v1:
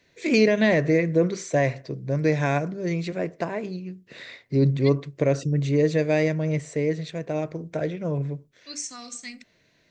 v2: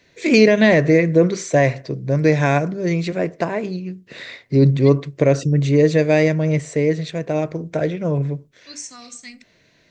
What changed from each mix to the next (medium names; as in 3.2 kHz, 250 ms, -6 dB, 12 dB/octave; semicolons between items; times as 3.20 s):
first voice +6.5 dB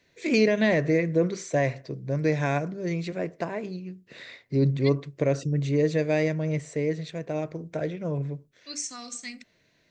first voice -9.0 dB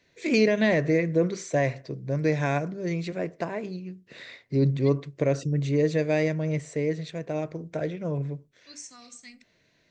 second voice -9.0 dB